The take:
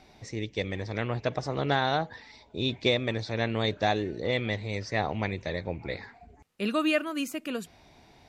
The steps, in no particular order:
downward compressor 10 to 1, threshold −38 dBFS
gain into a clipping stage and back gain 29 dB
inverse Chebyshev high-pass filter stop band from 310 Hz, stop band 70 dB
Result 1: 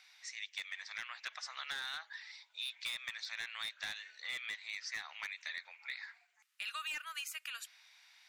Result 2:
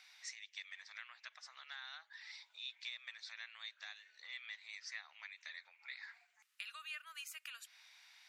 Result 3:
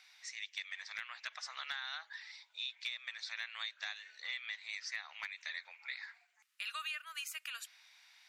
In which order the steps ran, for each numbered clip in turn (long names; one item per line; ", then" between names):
inverse Chebyshev high-pass filter, then gain into a clipping stage and back, then downward compressor
downward compressor, then inverse Chebyshev high-pass filter, then gain into a clipping stage and back
inverse Chebyshev high-pass filter, then downward compressor, then gain into a clipping stage and back